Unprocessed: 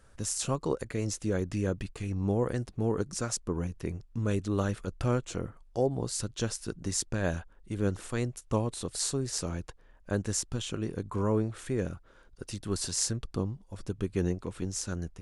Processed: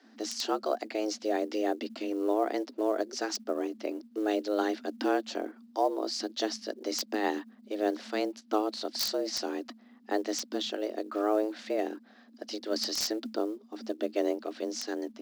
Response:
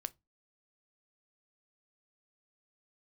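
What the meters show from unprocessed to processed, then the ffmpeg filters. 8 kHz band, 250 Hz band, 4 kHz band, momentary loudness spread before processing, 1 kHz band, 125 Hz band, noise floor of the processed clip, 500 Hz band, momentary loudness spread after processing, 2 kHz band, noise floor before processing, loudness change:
-6.0 dB, +0.5 dB, +4.5 dB, 8 LU, +6.5 dB, under -30 dB, -58 dBFS, +3.0 dB, 8 LU, +2.0 dB, -58 dBFS, +0.5 dB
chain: -filter_complex "[0:a]highshelf=f=6.6k:t=q:w=3:g=-14,afreqshift=210,acrossover=split=370|2500[a][b][c];[c]aeval=exprs='(mod(13.3*val(0)+1,2)-1)/13.3':c=same[d];[a][b][d]amix=inputs=3:normalize=0,acrusher=bits=8:mode=log:mix=0:aa=0.000001"

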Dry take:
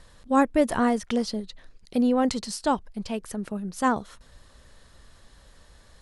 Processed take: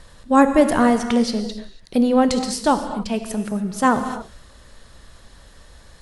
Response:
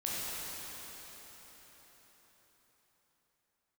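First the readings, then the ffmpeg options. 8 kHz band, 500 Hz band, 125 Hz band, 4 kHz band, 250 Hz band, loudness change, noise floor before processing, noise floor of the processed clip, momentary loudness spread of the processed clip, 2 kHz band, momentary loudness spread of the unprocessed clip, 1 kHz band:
+7.0 dB, +7.0 dB, +7.5 dB, +7.0 dB, +6.5 dB, +6.5 dB, -55 dBFS, -48 dBFS, 11 LU, +7.0 dB, 11 LU, +7.0 dB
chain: -filter_complex "[0:a]asplit=2[a][b];[1:a]atrim=start_sample=2205,afade=t=out:st=0.34:d=0.01,atrim=end_sample=15435[c];[b][c]afir=irnorm=-1:irlink=0,volume=-8dB[d];[a][d]amix=inputs=2:normalize=0,volume=4dB"

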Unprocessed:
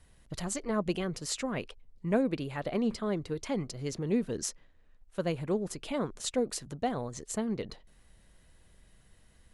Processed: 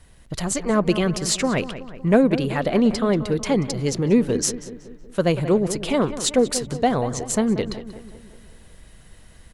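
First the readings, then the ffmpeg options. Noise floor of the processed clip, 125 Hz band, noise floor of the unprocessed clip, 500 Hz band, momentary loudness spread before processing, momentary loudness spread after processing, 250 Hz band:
-48 dBFS, +12.5 dB, -62 dBFS, +12.0 dB, 8 LU, 11 LU, +12.0 dB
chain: -filter_complex "[0:a]asplit=2[a][b];[b]adelay=186,lowpass=f=2.8k:p=1,volume=-13dB,asplit=2[c][d];[d]adelay=186,lowpass=f=2.8k:p=1,volume=0.54,asplit=2[e][f];[f]adelay=186,lowpass=f=2.8k:p=1,volume=0.54,asplit=2[g][h];[h]adelay=186,lowpass=f=2.8k:p=1,volume=0.54,asplit=2[i][j];[j]adelay=186,lowpass=f=2.8k:p=1,volume=0.54,asplit=2[k][l];[l]adelay=186,lowpass=f=2.8k:p=1,volume=0.54[m];[a][c][e][g][i][k][m]amix=inputs=7:normalize=0,dynaudnorm=f=180:g=7:m=3.5dB,asplit=2[n][o];[o]asoftclip=type=tanh:threshold=-27dB,volume=-10dB[p];[n][p]amix=inputs=2:normalize=0,volume=7dB"

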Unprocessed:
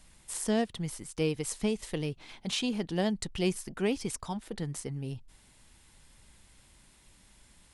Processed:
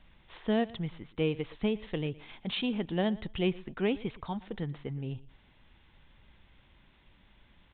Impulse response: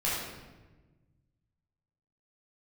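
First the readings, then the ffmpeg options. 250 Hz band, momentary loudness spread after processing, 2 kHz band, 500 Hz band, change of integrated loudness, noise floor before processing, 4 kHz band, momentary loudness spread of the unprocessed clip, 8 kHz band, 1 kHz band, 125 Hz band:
0.0 dB, 9 LU, 0.0 dB, 0.0 dB, -0.5 dB, -61 dBFS, -1.5 dB, 8 LU, under -40 dB, 0.0 dB, 0.0 dB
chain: -filter_complex "[0:a]aresample=8000,aresample=44100,asplit=2[a][b];[b]aecho=0:1:117|234:0.0944|0.0189[c];[a][c]amix=inputs=2:normalize=0"

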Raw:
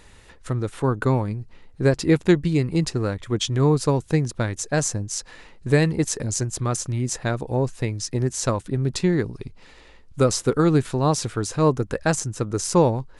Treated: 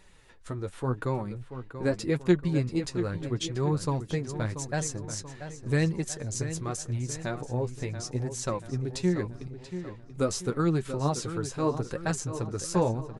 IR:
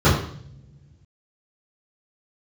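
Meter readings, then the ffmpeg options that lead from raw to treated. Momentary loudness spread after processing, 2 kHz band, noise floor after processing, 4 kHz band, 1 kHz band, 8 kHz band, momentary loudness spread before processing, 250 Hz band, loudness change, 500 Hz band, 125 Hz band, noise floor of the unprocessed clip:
10 LU, -7.5 dB, -49 dBFS, -8.0 dB, -7.5 dB, -8.0 dB, 9 LU, -7.5 dB, -8.0 dB, -8.0 dB, -7.5 dB, -49 dBFS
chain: -filter_complex "[0:a]flanger=delay=5.2:depth=6:regen=32:speed=0.83:shape=sinusoidal,asplit=2[a][b];[b]adelay=684,lowpass=f=4k:p=1,volume=-10.5dB,asplit=2[c][d];[d]adelay=684,lowpass=f=4k:p=1,volume=0.49,asplit=2[e][f];[f]adelay=684,lowpass=f=4k:p=1,volume=0.49,asplit=2[g][h];[h]adelay=684,lowpass=f=4k:p=1,volume=0.49,asplit=2[i][j];[j]adelay=684,lowpass=f=4k:p=1,volume=0.49[k];[a][c][e][g][i][k]amix=inputs=6:normalize=0,volume=-4.5dB"

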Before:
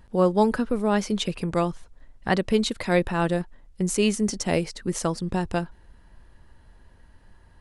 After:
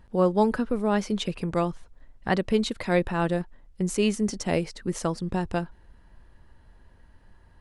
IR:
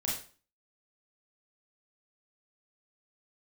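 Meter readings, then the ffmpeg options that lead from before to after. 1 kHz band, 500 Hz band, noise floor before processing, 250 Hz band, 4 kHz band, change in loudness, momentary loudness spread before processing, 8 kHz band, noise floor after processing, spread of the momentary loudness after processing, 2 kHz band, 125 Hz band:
-1.5 dB, -1.5 dB, -54 dBFS, -1.5 dB, -3.5 dB, -2.0 dB, 7 LU, -5.0 dB, -55 dBFS, 7 LU, -2.5 dB, -1.5 dB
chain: -af "highshelf=f=4.4k:g=-5,volume=-1.5dB"

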